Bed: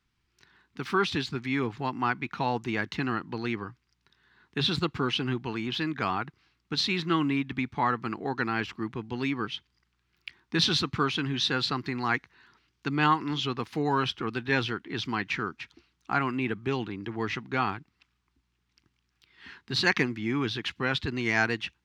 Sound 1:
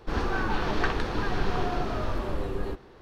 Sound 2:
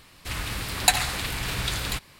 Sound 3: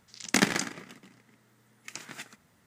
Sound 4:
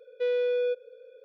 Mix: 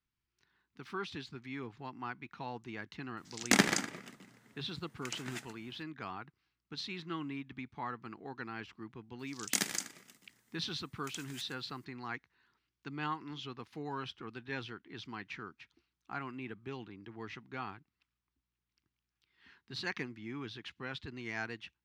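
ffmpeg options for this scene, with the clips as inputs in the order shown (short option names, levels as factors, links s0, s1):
-filter_complex "[3:a]asplit=2[s0][s1];[0:a]volume=0.2[s2];[s1]crystalizer=i=4:c=0[s3];[s0]atrim=end=2.66,asetpts=PTS-STARTPTS,volume=0.794,afade=t=in:d=0.004:c=hsin,afade=t=out:st=2.656:d=0.004:c=hsin,adelay=139797S[s4];[s3]atrim=end=2.66,asetpts=PTS-STARTPTS,volume=0.168,afade=t=in:d=0.004:c=hsin,afade=t=out:st=2.656:d=0.004:c=hsin,adelay=9190[s5];[s2][s4][s5]amix=inputs=3:normalize=0"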